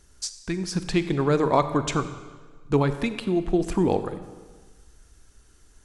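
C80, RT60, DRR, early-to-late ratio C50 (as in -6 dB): 12.5 dB, 1.4 s, 10.5 dB, 11.0 dB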